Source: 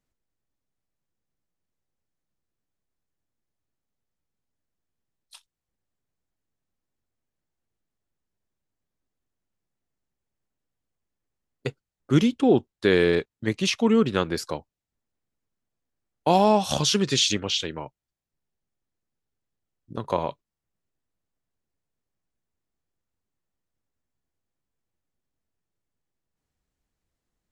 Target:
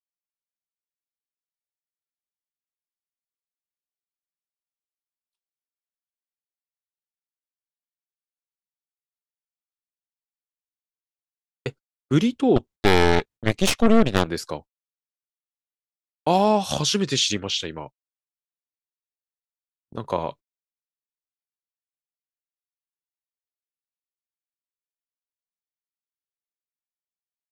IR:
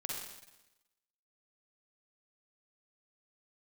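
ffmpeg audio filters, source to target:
-filter_complex "[0:a]asettb=1/sr,asplit=3[link_01][link_02][link_03];[link_01]atrim=end=12.564[link_04];[link_02]atrim=start=12.56:end=14.27,asetpts=PTS-STARTPTS,afade=type=in:duration=0.004:curve=qsin,afade=type=out:start_time=1.706:duration=0.004:curve=qsin,aeval=exprs='0.447*(cos(1*acos(clip(val(0)/0.447,-1,1)))-cos(1*PI/2))+0.1*(cos(4*acos(clip(val(0)/0.447,-1,1)))-cos(4*PI/2))+0.0708*(cos(8*acos(clip(val(0)/0.447,-1,1)))-cos(8*PI/2))':channel_layout=same[link_05];[link_03]atrim=start=14.266[link_06];[link_04][link_05]acrossfade=duration=0.004:curve1=hsin:curve2=qsin[link_07];[link_07][link_06]acrossfade=duration=0.004:curve1=qsin:curve2=hsin,agate=range=-45dB:threshold=-39dB:ratio=16:detection=peak"

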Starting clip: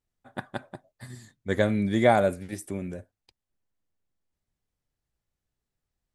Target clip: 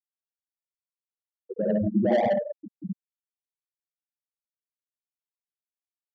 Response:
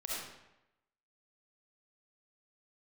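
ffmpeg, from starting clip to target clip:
-filter_complex "[0:a]asettb=1/sr,asplit=3[link_01][link_02][link_03];[link_01]atrim=end=1.644[link_04];[link_02]atrim=start=1.64:end=2.27,asetpts=PTS-STARTPTS,afade=type=in:duration=0.004:curve=qsin,afade=type=out:start_time=0.626:duration=0.004:curve=qsin,lowshelf=frequency=80:gain=-8.5[link_05];[link_03]atrim=start=2.266[link_06];[link_04][link_05]acrossfade=duration=0.004:curve1=hsin:curve2=qsin[link_07];[link_07][link_06]acrossfade=duration=0.004:curve1=qsin:curve2=hsin[link_08];[1:a]atrim=start_sample=2205[link_09];[link_08][link_09]afir=irnorm=-1:irlink=0,asplit=2[link_10][link_11];[link_11]acompressor=threshold=-37dB:ratio=5,volume=1dB[link_12];[link_10][link_12]amix=inputs=2:normalize=0,equalizer=frequency=5000:width=0.66:gain=-14.5,afftfilt=real='re*gte(hypot(re,im),0.355)':imag='im*gte(hypot(re,im),0.355)':win_size=1024:overlap=0.75,acrossover=split=430[link_13][link_14];[link_14]asoftclip=type=tanh:threshold=-23dB[link_15];[link_13][link_15]amix=inputs=2:normalize=0"

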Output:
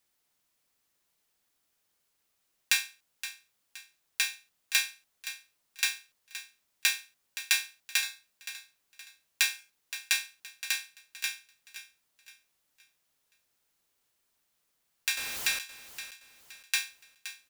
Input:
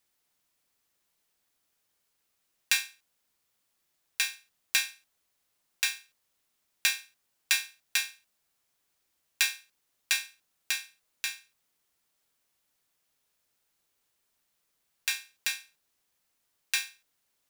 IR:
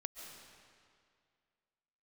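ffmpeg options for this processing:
-filter_complex "[0:a]asettb=1/sr,asplit=3[link_01][link_02][link_03];[link_01]atrim=end=15.174[link_04];[link_02]atrim=start=15.17:end=15.59,asetpts=PTS-STARTPTS,afade=type=in:duration=0.004:curve=qsin,afade=type=out:start_time=0.416:duration=0.004:curve=qsin,aeval=exprs='val(0)+0.5*0.0282*sgn(val(0))':channel_layout=same[link_05];[link_03]atrim=start=15.586[link_06];[link_04][link_05]acrossfade=duration=0.004:curve1=hsin:curve2=qsin[link_07];[link_07][link_06]acrossfade=duration=0.004:curve1=qsin:curve2=hsin,aecho=1:1:520|1040|1560|2080:0.224|0.0828|0.0306|0.0113"

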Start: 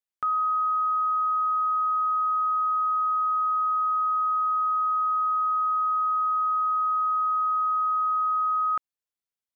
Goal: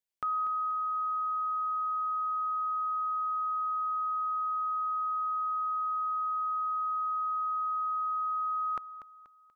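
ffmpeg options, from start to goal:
ffmpeg -i in.wav -filter_complex "[0:a]equalizer=frequency=1300:width_type=o:width=0.77:gain=-6,asplit=2[link_01][link_02];[link_02]aecho=0:1:241|482|723|964:0.237|0.0925|0.0361|0.0141[link_03];[link_01][link_03]amix=inputs=2:normalize=0" out.wav

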